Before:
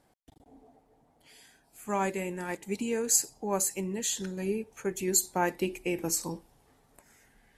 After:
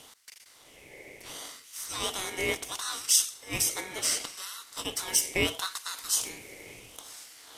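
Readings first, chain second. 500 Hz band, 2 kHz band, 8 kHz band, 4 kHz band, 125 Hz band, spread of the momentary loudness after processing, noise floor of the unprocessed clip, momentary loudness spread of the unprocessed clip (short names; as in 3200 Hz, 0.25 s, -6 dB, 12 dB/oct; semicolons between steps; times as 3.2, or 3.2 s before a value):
-6.0 dB, +4.5 dB, +2.0 dB, +10.0 dB, -5.0 dB, 22 LU, -68 dBFS, 10 LU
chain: per-bin compression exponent 0.6; LFO high-pass sine 0.72 Hz 880–3500 Hz; ring modulator 1300 Hz; gain +2 dB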